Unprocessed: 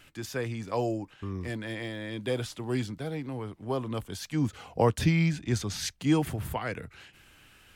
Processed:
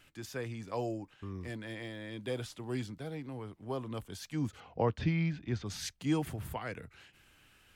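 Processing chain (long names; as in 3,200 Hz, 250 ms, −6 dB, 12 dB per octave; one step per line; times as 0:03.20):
0:04.60–0:05.66: Bessel low-pass filter 3,300 Hz, order 4
level −6.5 dB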